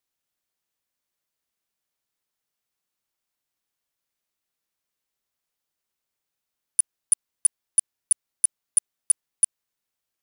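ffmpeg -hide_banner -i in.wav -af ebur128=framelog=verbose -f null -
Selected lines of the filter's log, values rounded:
Integrated loudness:
  I:         -24.1 LUFS
  Threshold: -34.0 LUFS
Loudness range:
  LRA:         9.6 LU
  Threshold: -46.2 LUFS
  LRA low:   -33.5 LUFS
  LRA high:  -23.9 LUFS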